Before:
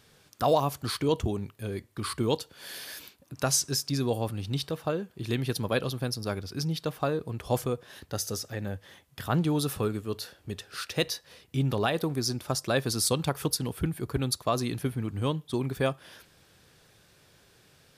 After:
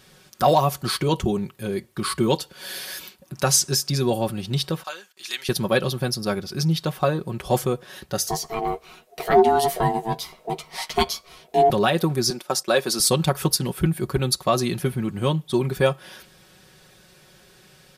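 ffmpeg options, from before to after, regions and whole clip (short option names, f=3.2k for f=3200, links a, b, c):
-filter_complex "[0:a]asettb=1/sr,asplit=3[a][b][c];[a]atrim=end=4.834[d];[b]atrim=start=4.83:end=5.49,asetpts=PTS-STARTPTS,afade=t=in:d=0.004:c=qsin,afade=t=out:st=0.656:d=0.004:c=qsin,agate=range=-16dB:threshold=-56dB:ratio=16:release=100:detection=peak,highpass=1.4k,equalizer=f=6.2k:w=1.2:g=8[e];[c]atrim=start=5.486[f];[d][e]acrossfade=d=0.004:c1=hsin:c2=qsin[g];[g][f]acrossfade=d=0.004:c1=qsin:c2=hsin,asettb=1/sr,asplit=3[h][i][j];[h]atrim=end=8.284[k];[i]atrim=start=8.28:end=11.7,asetpts=PTS-STARTPTS,afade=t=in:d=0.004:c=qsin,afade=t=out:st=3.416:d=0.004:c=qsin,lowshelf=f=160:g=11,aeval=exprs='val(0)*sin(2*PI*560*n/s)':c=same,asplit=2[l][m];[m]adelay=13,volume=-8dB[n];[l][n]amix=inputs=2:normalize=0,atrim=end_sample=150822[o];[j]atrim=start=11.696[p];[k][o]acrossfade=d=0.004:c1=hsin:c2=qsin[q];[q][p]acrossfade=d=0.004:c1=qsin:c2=hsin,asettb=1/sr,asplit=3[r][s][t];[r]atrim=end=12.304[u];[s]atrim=start=12.3:end=13,asetpts=PTS-STARTPTS,afade=t=in:d=0.004:c=qsin,afade=t=out:st=0.696:d=0.004:c=qsin,agate=range=-11dB:threshold=-41dB:ratio=16:release=100:detection=peak,highpass=290[v];[t]atrim=start=12.996[w];[u][v]acrossfade=d=0.004:c1=hsin:c2=qsin[x];[x][w]acrossfade=d=0.004:c1=qsin:c2=hsin,aecho=1:1:5.4:0.65,acontrast=50"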